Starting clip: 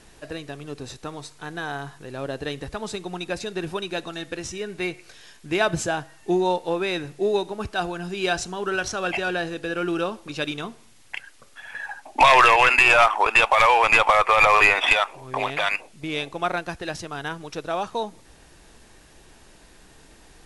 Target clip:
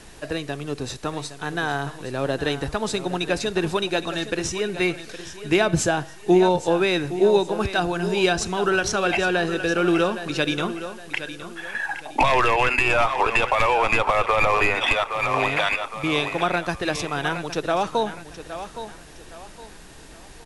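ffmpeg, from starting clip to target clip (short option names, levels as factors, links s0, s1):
-filter_complex "[0:a]aecho=1:1:815|1630|2445:0.224|0.0739|0.0244,acrossover=split=410[s0][s1];[s1]acompressor=threshold=0.0562:ratio=6[s2];[s0][s2]amix=inputs=2:normalize=0,volume=2"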